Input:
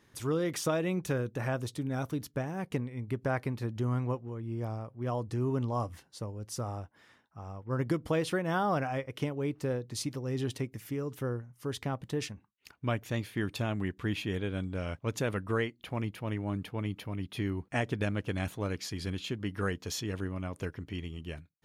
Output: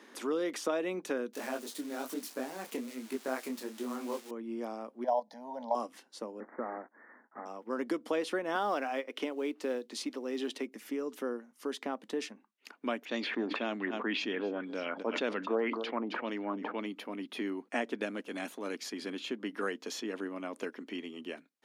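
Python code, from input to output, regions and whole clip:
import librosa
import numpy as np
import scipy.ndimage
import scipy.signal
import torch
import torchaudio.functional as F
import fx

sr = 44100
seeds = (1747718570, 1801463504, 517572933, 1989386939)

y = fx.chain(x, sr, fx.crossing_spikes(level_db=-27.5),
    fx.detune_double(cents=38), at=(1.33, 4.31))
y = fx.chain(y, sr, fx.band_shelf(hz=730.0, db=14.5, octaves=1.1),
    fx.level_steps(step_db=12),
    fx.fixed_phaser(hz=1800.0, stages=8), at=(5.04, 5.75))
y = fx.chain(y, sr, fx.block_float(bits=3),
    fx.steep_lowpass(hz=2000.0, slope=96), at=(6.4, 7.46))
y = fx.chain(y, sr, fx.highpass(hz=200.0, slope=12),
    fx.peak_eq(hz=3300.0, db=4.5, octaves=1.1),
    fx.quant_float(bits=4), at=(8.55, 10.66))
y = fx.chain(y, sr, fx.filter_lfo_lowpass(shape='sine', hz=1.9, low_hz=710.0, high_hz=5700.0, q=3.1),
    fx.echo_single(ms=263, db=-20.0),
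    fx.sustainer(db_per_s=39.0), at=(13.05, 16.86))
y = fx.chain(y, sr, fx.high_shelf(hz=6800.0, db=8.5),
    fx.transient(attack_db=-11, sustain_db=-4), at=(18.06, 18.91))
y = scipy.signal.sosfilt(scipy.signal.ellip(4, 1.0, 50, 230.0, 'highpass', fs=sr, output='sos'), y)
y = fx.high_shelf(y, sr, hz=11000.0, db=-10.0)
y = fx.band_squash(y, sr, depth_pct=40)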